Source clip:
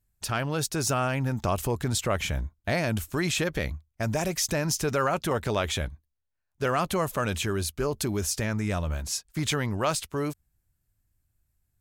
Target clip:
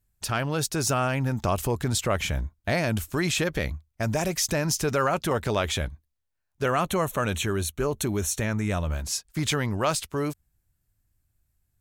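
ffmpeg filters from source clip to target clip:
ffmpeg -i in.wav -filter_complex "[0:a]asettb=1/sr,asplit=3[link_01][link_02][link_03];[link_01]atrim=end=6.634[link_04];[link_02]atrim=start=6.63:end=8.89,asetpts=PTS-STARTPTS,afade=type=in:duration=0.004:curve=qsin,afade=type=out:start_time=2.256:duration=0.004:curve=qsin,asuperstop=centerf=4900:order=4:qfactor=4.6[link_05];[link_03]atrim=start=8.886[link_06];[link_04][link_05]acrossfade=duration=0.004:curve1=hsin:curve2=qsin[link_07];[link_07][link_06]acrossfade=duration=0.004:curve1=qsin:curve2=hsin,volume=1.5dB" out.wav

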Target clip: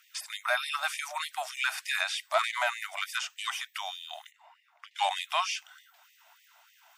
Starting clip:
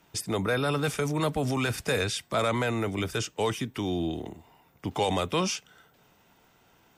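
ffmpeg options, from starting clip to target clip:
ffmpeg -i in.wav -filter_complex "[0:a]acrossover=split=3500[link_01][link_02];[link_02]acompressor=threshold=-42dB:ratio=4:attack=1:release=60[link_03];[link_01][link_03]amix=inputs=2:normalize=0,asettb=1/sr,asplit=3[link_04][link_05][link_06];[link_04]atrim=end=2.134[link_07];[link_05]atrim=start=2.13:end=3.42,asetpts=PTS-STARTPTS,afade=type=in:duration=0.004:curve=qsin,afade=type=out:start_time=1.286:duration=0.004:curve=qsin,aeval=exprs='0.168*(cos(1*acos(clip(val(0)/0.168,-1,1)))-cos(1*PI/2))+0.0266*(cos(2*acos(clip(val(0)/0.168,-1,1)))-cos(2*PI/2))+0.00422*(cos(6*acos(clip(val(0)/0.168,-1,1)))-cos(6*PI/2))':channel_layout=same[link_08];[link_06]atrim=start=3.416[link_09];[link_07][link_08]acrossfade=duration=0.004:curve1=hsin:curve2=qsin[link_10];[link_10][link_09]acrossfade=duration=0.004:curve1=qsin:curve2=hsin,asplit=3[link_11][link_12][link_13];[link_11]afade=type=out:start_time=4.3:duration=0.02[link_14];[link_12]aemphasis=mode=reproduction:type=riaa,afade=type=in:start_time=4.3:duration=0.02,afade=type=out:start_time=4.97:duration=0.02[link_15];[link_13]afade=type=in:start_time=4.97:duration=0.02[link_16];[link_14][link_15][link_16]amix=inputs=3:normalize=0,asplit=2[link_17][link_18];[link_18]asoftclip=type=tanh:threshold=-21dB,volume=-4dB[link_19];[link_17][link_19]amix=inputs=2:normalize=0,afftfilt=real='re*gte(b*sr/1024,570*pow(1800/570,0.5+0.5*sin(2*PI*3.3*pts/sr)))':imag='im*gte(b*sr/1024,570*pow(1800/570,0.5+0.5*sin(2*PI*3.3*pts/sr)))':win_size=1024:overlap=0.75" out.wav

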